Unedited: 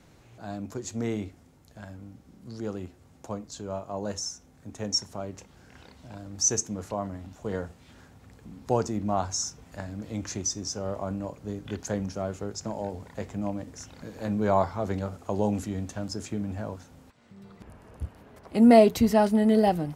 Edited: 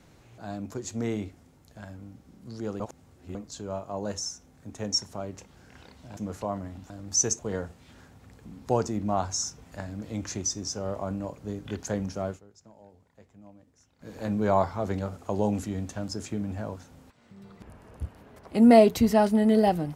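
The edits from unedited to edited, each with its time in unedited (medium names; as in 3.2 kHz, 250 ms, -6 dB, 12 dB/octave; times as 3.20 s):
2.80–3.35 s: reverse
6.17–6.66 s: move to 7.39 s
12.29–14.11 s: dip -20 dB, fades 0.12 s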